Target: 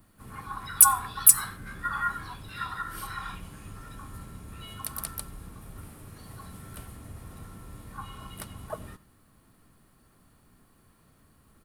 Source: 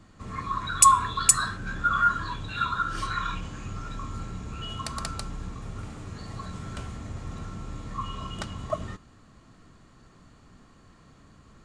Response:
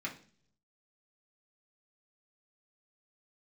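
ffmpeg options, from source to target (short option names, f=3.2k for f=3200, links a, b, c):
-filter_complex "[0:a]asplit=3[a][b][c];[b]asetrate=33038,aresample=44100,atempo=1.33484,volume=-10dB[d];[c]asetrate=58866,aresample=44100,atempo=0.749154,volume=-10dB[e];[a][d][e]amix=inputs=3:normalize=0,aexciter=amount=9.4:drive=9:freq=9.8k,asplit=2[f][g];[1:a]atrim=start_sample=2205,adelay=89[h];[g][h]afir=irnorm=-1:irlink=0,volume=-23.5dB[i];[f][i]amix=inputs=2:normalize=0,volume=-8dB"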